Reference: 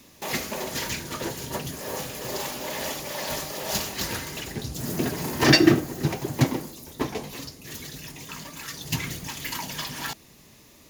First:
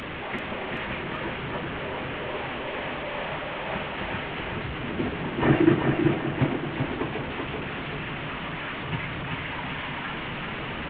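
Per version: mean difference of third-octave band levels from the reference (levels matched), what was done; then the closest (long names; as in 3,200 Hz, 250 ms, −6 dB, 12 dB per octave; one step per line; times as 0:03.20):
14.0 dB: linear delta modulator 16 kbit/s, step −25.5 dBFS
flanger 0.44 Hz, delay 1.7 ms, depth 4.6 ms, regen −73%
on a send: repeating echo 386 ms, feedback 43%, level −4 dB
on the sum: level +2 dB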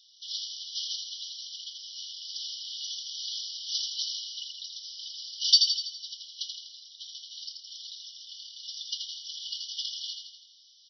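28.5 dB: brick-wall band-pass 2,900–5,900 Hz
repeating echo 82 ms, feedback 56%, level −5 dB
level +1 dB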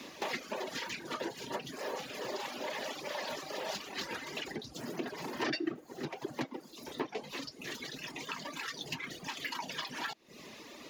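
7.0 dB: downward compressor 4 to 1, threshold −44 dBFS, peak gain reduction 27 dB
three-way crossover with the lows and the highs turned down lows −20 dB, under 210 Hz, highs −17 dB, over 5,200 Hz
reverb reduction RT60 0.93 s
level +9 dB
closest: third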